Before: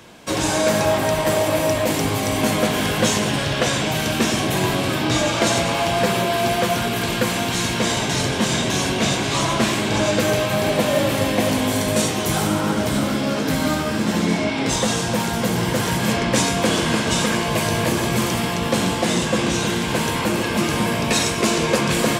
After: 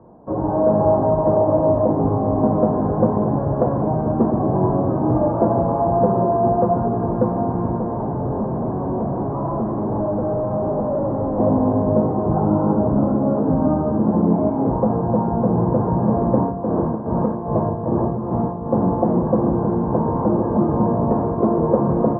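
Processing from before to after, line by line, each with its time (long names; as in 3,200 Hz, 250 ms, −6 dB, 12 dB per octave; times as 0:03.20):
0:07.77–0:11.40: gain into a clipping stage and back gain 22 dB
0:16.40–0:18.75: amplitude tremolo 2.5 Hz, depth 64%
whole clip: Butterworth low-pass 980 Hz 36 dB per octave; automatic gain control gain up to 4 dB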